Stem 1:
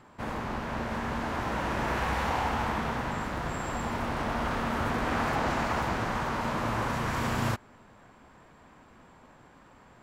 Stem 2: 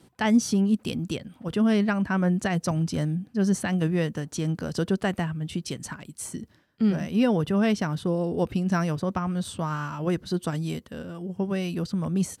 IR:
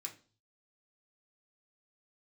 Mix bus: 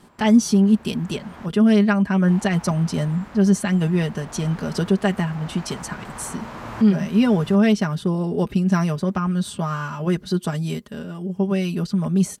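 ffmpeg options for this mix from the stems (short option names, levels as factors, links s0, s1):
-filter_complex "[0:a]volume=0.891,asplit=3[s0][s1][s2];[s0]atrim=end=1.46,asetpts=PTS-STARTPTS,afade=t=out:st=1.456:d=0.004:c=hsin[s3];[s1]atrim=start=1.46:end=2.28,asetpts=PTS-STARTPTS,volume=0[s4];[s2]atrim=start=2.28,asetpts=PTS-STARTPTS,afade=t=in:d=0.004:c=hsin[s5];[s3][s4][s5]concat=n=3:v=0:a=1[s6];[1:a]aecho=1:1:4.9:0.67,volume=1.33,asplit=2[s7][s8];[s8]apad=whole_len=442091[s9];[s6][s9]sidechaincompress=threshold=0.0355:ratio=3:attack=16:release=1450[s10];[s10][s7]amix=inputs=2:normalize=0"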